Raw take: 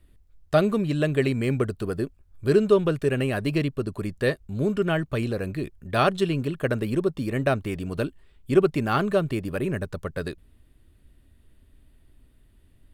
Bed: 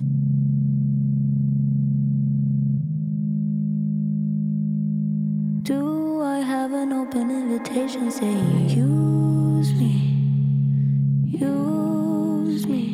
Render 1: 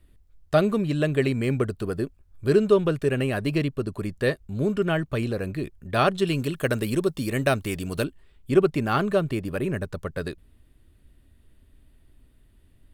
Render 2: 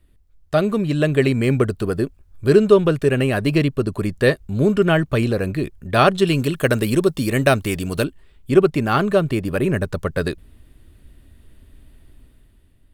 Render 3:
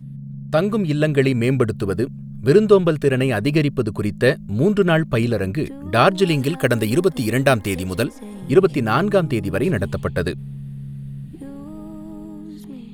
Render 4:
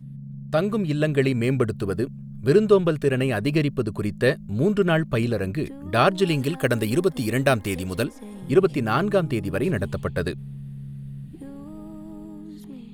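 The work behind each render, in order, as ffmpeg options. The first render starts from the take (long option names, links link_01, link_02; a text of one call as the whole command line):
ffmpeg -i in.wav -filter_complex "[0:a]asettb=1/sr,asplit=3[link_01][link_02][link_03];[link_01]atrim=end=6.274[link_04];[link_02]atrim=start=6.27:end=8.04,asetpts=PTS-STARTPTS,afade=type=in:duration=0.004:curve=qsin,afade=type=out:start_time=1.766:duration=0.004:curve=qsin,highshelf=frequency=3300:gain=11.5[link_05];[link_03]atrim=start=8.036[link_06];[link_04][link_05]acrossfade=duration=0.004:curve1=hsin:curve2=qsin[link_07];[link_07][link_06]acrossfade=duration=0.004:curve1=qsin:curve2=hsin" out.wav
ffmpeg -i in.wav -af "dynaudnorm=framelen=130:gausssize=11:maxgain=9dB" out.wav
ffmpeg -i in.wav -i bed.wav -filter_complex "[1:a]volume=-13dB[link_01];[0:a][link_01]amix=inputs=2:normalize=0" out.wav
ffmpeg -i in.wav -af "volume=-4dB" out.wav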